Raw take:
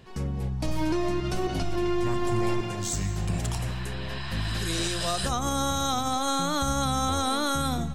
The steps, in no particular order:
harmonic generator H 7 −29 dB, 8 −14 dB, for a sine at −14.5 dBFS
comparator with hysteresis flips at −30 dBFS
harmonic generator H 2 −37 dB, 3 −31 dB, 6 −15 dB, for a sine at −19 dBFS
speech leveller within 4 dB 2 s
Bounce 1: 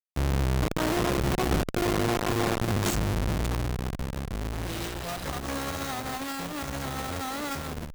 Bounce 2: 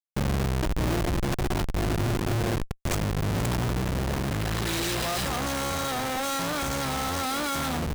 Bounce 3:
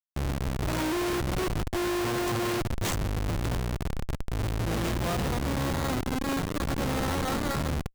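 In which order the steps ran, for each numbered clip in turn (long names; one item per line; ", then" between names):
comparator with hysteresis, then second harmonic generator, then speech leveller, then first harmonic generator
first harmonic generator, then second harmonic generator, then comparator with hysteresis, then speech leveller
second harmonic generator, then speech leveller, then first harmonic generator, then comparator with hysteresis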